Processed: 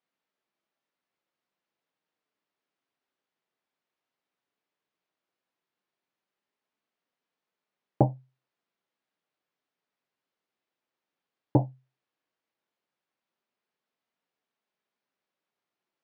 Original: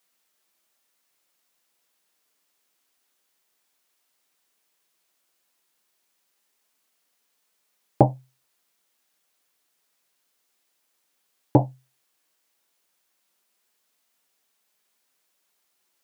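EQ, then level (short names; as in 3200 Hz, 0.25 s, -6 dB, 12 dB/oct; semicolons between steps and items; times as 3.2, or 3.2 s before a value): HPF 80 Hz; air absorption 180 m; tilt -1.5 dB/oct; -7.5 dB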